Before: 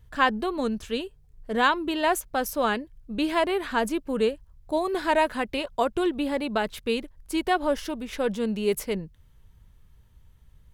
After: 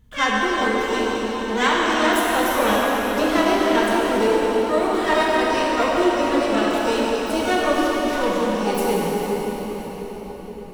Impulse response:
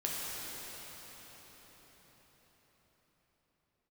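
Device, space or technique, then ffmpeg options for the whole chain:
shimmer-style reverb: -filter_complex "[0:a]asettb=1/sr,asplit=3[s0][s1][s2];[s0]atrim=end=2.224[s3];[s1]atrim=start=2.22:end=3.46,asetpts=PTS-STARTPTS,afade=t=in:d=0.004:c=qsin,afade=t=out:st=1.236:d=0.004:c=qsin,lowshelf=f=360:g=3[s4];[s2]atrim=start=3.456[s5];[s3][s4]acrossfade=d=0.004:c1=hsin:c2=qsin[s6];[s6][s5]acrossfade=d=0.004:c1=qsin:c2=hsin,asplit=2[s7][s8];[s8]asetrate=88200,aresample=44100,atempo=0.5,volume=0.501[s9];[s7][s9]amix=inputs=2:normalize=0[s10];[1:a]atrim=start_sample=2205[s11];[s10][s11]afir=irnorm=-1:irlink=0"

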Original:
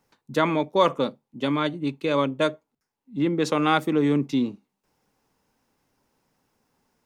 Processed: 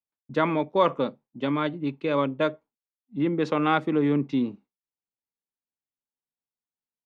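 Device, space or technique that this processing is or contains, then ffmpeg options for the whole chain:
hearing-loss simulation: -af "lowpass=3000,agate=range=0.0224:threshold=0.00891:ratio=3:detection=peak,volume=0.841"

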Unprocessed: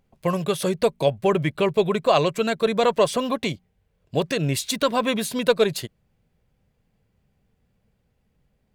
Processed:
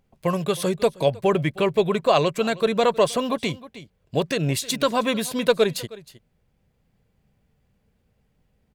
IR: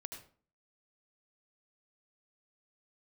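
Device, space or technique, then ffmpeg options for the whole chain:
ducked delay: -filter_complex "[0:a]asplit=3[s0][s1][s2];[s1]adelay=314,volume=0.631[s3];[s2]apad=whole_len=399449[s4];[s3][s4]sidechaincompress=threshold=0.0141:ratio=6:attack=47:release=852[s5];[s0][s5]amix=inputs=2:normalize=0"

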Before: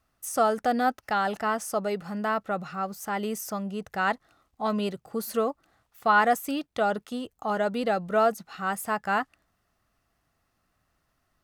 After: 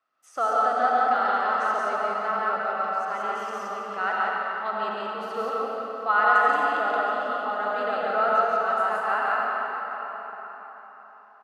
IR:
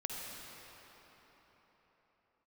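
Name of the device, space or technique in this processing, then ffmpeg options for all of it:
station announcement: -filter_complex "[0:a]highpass=460,lowpass=3800,equalizer=f=1300:t=o:w=0.32:g=7.5,aecho=1:1:137|174.9:0.631|0.891[s0];[1:a]atrim=start_sample=2205[s1];[s0][s1]afir=irnorm=-1:irlink=0,volume=0.708"

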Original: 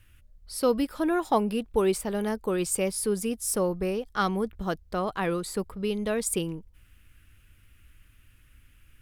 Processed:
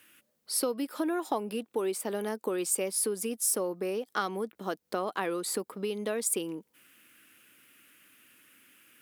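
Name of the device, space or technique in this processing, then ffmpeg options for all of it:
ASMR close-microphone chain: -af "lowshelf=f=200:g=4.5,acompressor=threshold=0.0251:ratio=6,highpass=f=250:w=0.5412,highpass=f=250:w=1.3066,highshelf=f=10000:g=6.5,volume=1.68"

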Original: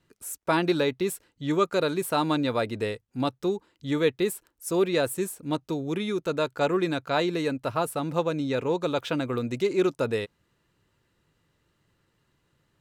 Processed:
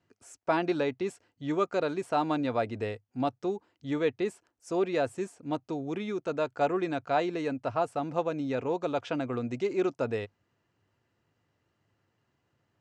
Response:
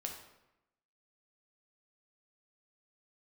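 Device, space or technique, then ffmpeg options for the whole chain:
car door speaker: -af "highpass=84,equalizer=f=100:t=q:w=4:g=6,equalizer=f=170:t=q:w=4:g=-4,equalizer=f=250:t=q:w=4:g=3,equalizer=f=720:t=q:w=4:g=8,equalizer=f=3800:t=q:w=4:g=-7,lowpass=f=6800:w=0.5412,lowpass=f=6800:w=1.3066,volume=0.562"

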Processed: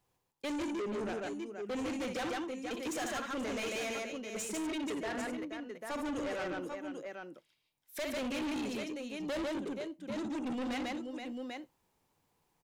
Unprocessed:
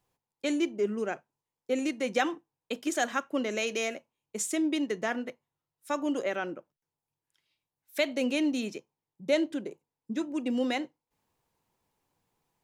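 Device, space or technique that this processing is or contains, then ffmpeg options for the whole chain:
saturation between pre-emphasis and de-emphasis: -filter_complex "[0:a]asettb=1/sr,asplit=3[s0][s1][s2];[s0]atrim=end=4.424[s3];[s1]atrim=start=4.42:end=5.18,asetpts=PTS-STARTPTS,afade=t=in:d=0.004:c=qsin,afade=t=out:st=0.756:d=0.004:c=qsin,bass=f=250:g=-5,treble=f=4000:g=-6[s4];[s2]atrim=start=5.176[s5];[s3][s4]acrossfade=d=0.004:c1=hsin:c2=qsin[s6];[s6][s5]acrossfade=d=0.004:c1=qsin:c2=hsin,highshelf=f=11000:g=8,aecho=1:1:61|146|477|793:0.299|0.668|0.211|0.266,asoftclip=type=tanh:threshold=0.02,highshelf=f=11000:g=-8"

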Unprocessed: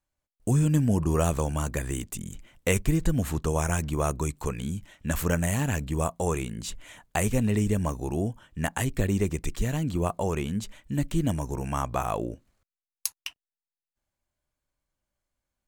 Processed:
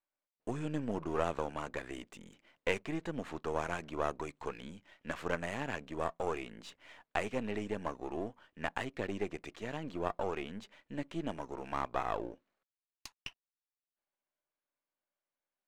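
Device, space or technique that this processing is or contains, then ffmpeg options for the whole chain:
crystal radio: -af "highpass=340,lowpass=3100,aeval=exprs='if(lt(val(0),0),0.447*val(0),val(0))':c=same,volume=0.708"

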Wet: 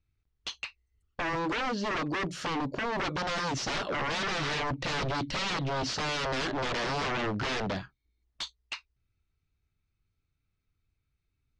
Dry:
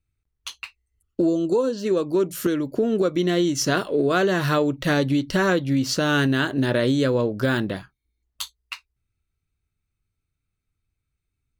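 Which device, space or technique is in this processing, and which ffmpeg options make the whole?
synthesiser wavefolder: -af "aeval=exprs='0.0501*(abs(mod(val(0)/0.0501+3,4)-2)-1)':c=same,lowpass=f=5900:w=0.5412,lowpass=f=5900:w=1.3066"

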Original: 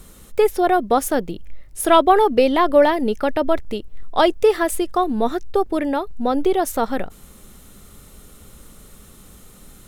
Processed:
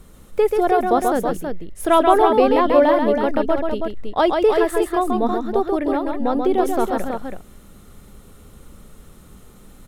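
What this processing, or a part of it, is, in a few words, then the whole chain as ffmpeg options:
behind a face mask: -af "highshelf=f=2600:g=-8,aecho=1:1:135|325:0.596|0.501,volume=0.891"

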